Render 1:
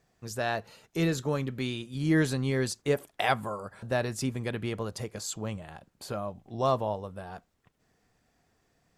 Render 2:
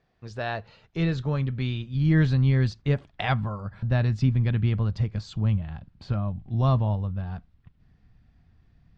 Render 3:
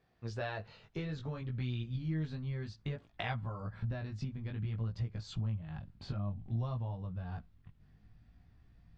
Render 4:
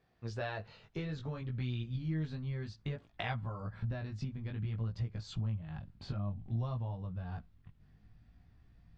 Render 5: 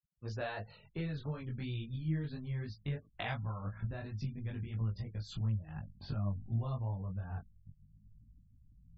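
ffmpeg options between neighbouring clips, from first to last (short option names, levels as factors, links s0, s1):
-af "lowpass=f=4400:w=0.5412,lowpass=f=4400:w=1.3066,asubboost=boost=11:cutoff=140"
-af "acompressor=threshold=0.0282:ratio=12,flanger=delay=16.5:depth=4:speed=0.58"
-af anull
-af "flanger=delay=18.5:depth=3.2:speed=2.9,afftfilt=real='re*gte(hypot(re,im),0.00112)':imag='im*gte(hypot(re,im),0.00112)':win_size=1024:overlap=0.75,volume=1.33"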